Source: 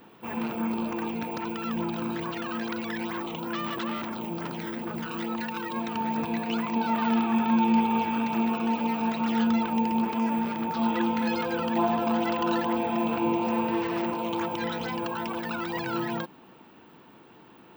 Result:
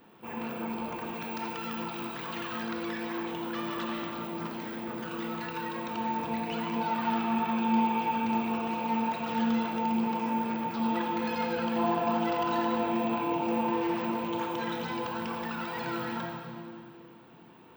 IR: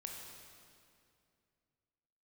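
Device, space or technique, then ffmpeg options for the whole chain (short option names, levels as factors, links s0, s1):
stairwell: -filter_complex "[1:a]atrim=start_sample=2205[s0];[0:a][s0]afir=irnorm=-1:irlink=0,asettb=1/sr,asplit=3[s1][s2][s3];[s1]atrim=end=1.134[s4];[s2]atrim=start=1.13:end=2.63,asetpts=PTS-STARTPTS,afade=t=in:d=0.004:c=qsin,afade=t=out:st=1.496:d=0.004:c=qsin,tiltshelf=f=970:g=-3.5[s5];[s3]atrim=start=2.626[s6];[s4][s5]acrossfade=d=0.004:c1=hsin:c2=qsin[s7];[s7][s6]acrossfade=d=0.004:c1=qsin:c2=hsin"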